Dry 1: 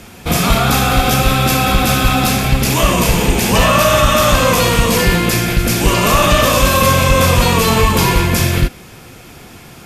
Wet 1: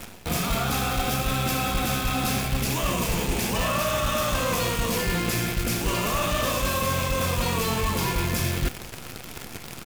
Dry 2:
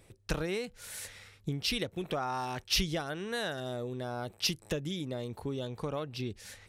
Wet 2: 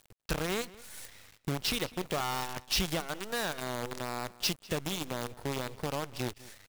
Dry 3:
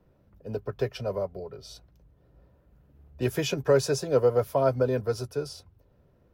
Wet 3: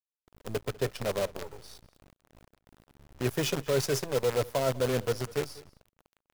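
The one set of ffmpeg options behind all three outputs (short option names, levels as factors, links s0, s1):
-filter_complex "[0:a]areverse,acompressor=threshold=0.0631:ratio=5,areverse,acrusher=bits=6:dc=4:mix=0:aa=0.000001,asplit=2[s0][s1];[s1]adelay=198.3,volume=0.1,highshelf=f=4000:g=-4.46[s2];[s0][s2]amix=inputs=2:normalize=0"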